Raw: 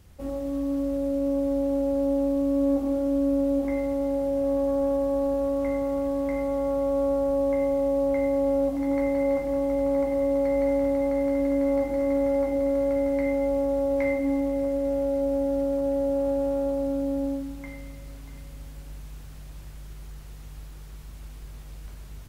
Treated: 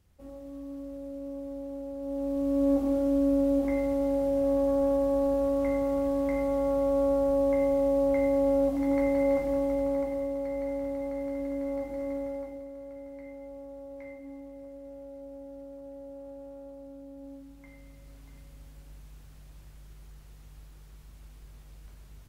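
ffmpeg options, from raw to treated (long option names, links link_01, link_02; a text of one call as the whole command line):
ffmpeg -i in.wav -af "volume=9.5dB,afade=type=in:start_time=2:duration=0.72:silence=0.251189,afade=type=out:start_time=9.42:duration=0.93:silence=0.398107,afade=type=out:start_time=12.09:duration=0.59:silence=0.316228,afade=type=in:start_time=17.16:duration=1.06:silence=0.298538" out.wav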